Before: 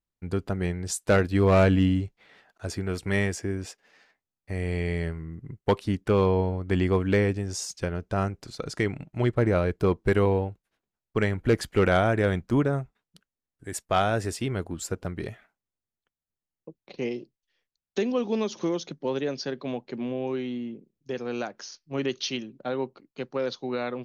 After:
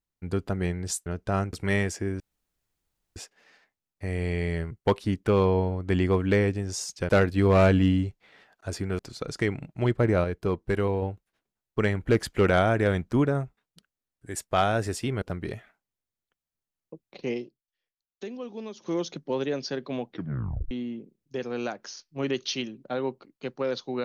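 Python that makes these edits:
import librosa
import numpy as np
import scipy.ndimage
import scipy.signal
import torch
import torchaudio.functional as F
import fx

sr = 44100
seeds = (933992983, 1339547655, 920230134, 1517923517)

y = fx.edit(x, sr, fx.swap(start_s=1.06, length_s=1.9, other_s=7.9, other_length_s=0.47),
    fx.insert_room_tone(at_s=3.63, length_s=0.96),
    fx.cut(start_s=5.18, length_s=0.34),
    fx.clip_gain(start_s=9.62, length_s=0.78, db=-4.0),
    fx.cut(start_s=14.6, length_s=0.37),
    fx.fade_down_up(start_s=17.12, length_s=1.59, db=-11.0, fade_s=0.13),
    fx.tape_stop(start_s=19.81, length_s=0.65), tone=tone)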